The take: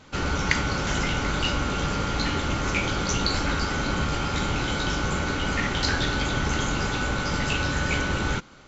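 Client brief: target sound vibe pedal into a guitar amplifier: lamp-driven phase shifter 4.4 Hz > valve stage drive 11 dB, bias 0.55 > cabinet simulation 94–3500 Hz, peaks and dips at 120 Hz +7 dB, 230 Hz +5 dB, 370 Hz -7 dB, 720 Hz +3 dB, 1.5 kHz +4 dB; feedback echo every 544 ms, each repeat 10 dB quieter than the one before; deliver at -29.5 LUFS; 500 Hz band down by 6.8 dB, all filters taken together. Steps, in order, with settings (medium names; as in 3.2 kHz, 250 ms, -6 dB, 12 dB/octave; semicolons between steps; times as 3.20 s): peaking EQ 500 Hz -7 dB; feedback delay 544 ms, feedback 32%, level -10 dB; lamp-driven phase shifter 4.4 Hz; valve stage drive 11 dB, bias 0.55; cabinet simulation 94–3500 Hz, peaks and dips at 120 Hz +7 dB, 230 Hz +5 dB, 370 Hz -7 dB, 720 Hz +3 dB, 1.5 kHz +4 dB; trim +2 dB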